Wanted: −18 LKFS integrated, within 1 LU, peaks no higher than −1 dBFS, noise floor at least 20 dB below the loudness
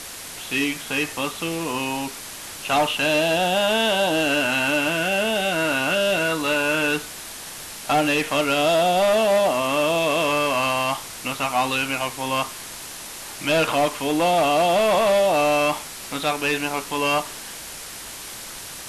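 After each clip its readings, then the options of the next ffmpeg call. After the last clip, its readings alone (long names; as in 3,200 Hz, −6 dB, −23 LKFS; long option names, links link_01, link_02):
background noise floor −36 dBFS; target noise floor −41 dBFS; integrated loudness −21.0 LKFS; sample peak −12.5 dBFS; target loudness −18.0 LKFS
→ -af "afftdn=noise_reduction=6:noise_floor=-36"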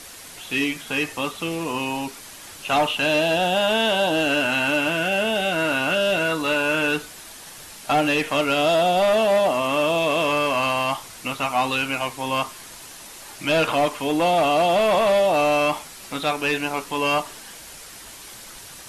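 background noise floor −41 dBFS; integrated loudness −21.0 LKFS; sample peak −13.0 dBFS; target loudness −18.0 LKFS
→ -af "volume=3dB"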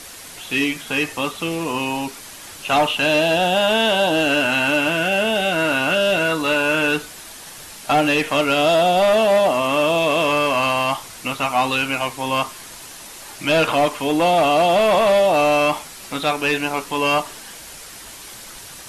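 integrated loudness −18.0 LKFS; sample peak −10.0 dBFS; background noise floor −38 dBFS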